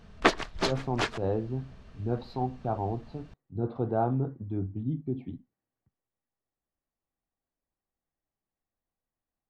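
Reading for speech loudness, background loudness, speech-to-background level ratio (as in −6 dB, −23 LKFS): −33.0 LKFS, −30.0 LKFS, −3.0 dB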